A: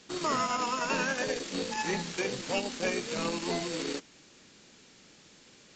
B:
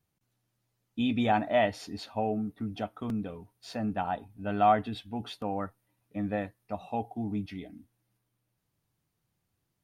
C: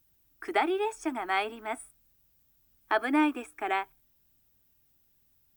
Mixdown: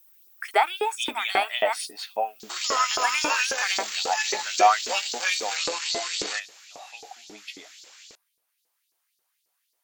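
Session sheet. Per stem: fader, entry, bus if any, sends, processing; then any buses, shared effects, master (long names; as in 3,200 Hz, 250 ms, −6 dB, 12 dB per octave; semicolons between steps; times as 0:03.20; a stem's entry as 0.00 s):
+2.0 dB, 2.40 s, no send, sub-octave generator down 2 octaves, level +3 dB
+1.5 dB, 0.00 s, no send, no processing
+2.0 dB, 0.00 s, no send, no processing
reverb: not used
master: spectral tilt +2.5 dB per octave; auto-filter high-pass saw up 3.7 Hz 390–5,200 Hz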